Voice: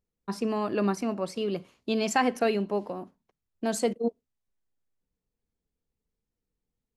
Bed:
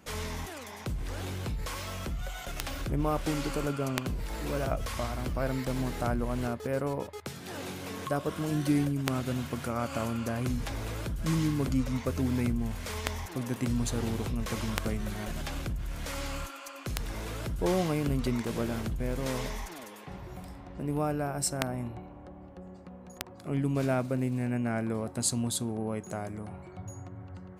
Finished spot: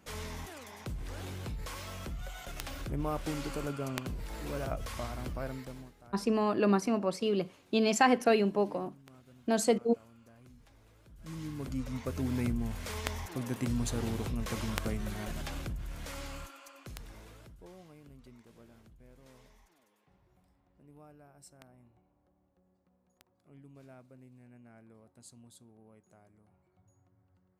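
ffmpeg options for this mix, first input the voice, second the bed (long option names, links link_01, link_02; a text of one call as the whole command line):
ffmpeg -i stem1.wav -i stem2.wav -filter_complex "[0:a]adelay=5850,volume=0dB[link_01];[1:a]volume=18.5dB,afade=type=out:start_time=5.27:duration=0.67:silence=0.0891251,afade=type=in:start_time=11.05:duration=1.45:silence=0.0668344,afade=type=out:start_time=15.28:duration=2.41:silence=0.0707946[link_02];[link_01][link_02]amix=inputs=2:normalize=0" out.wav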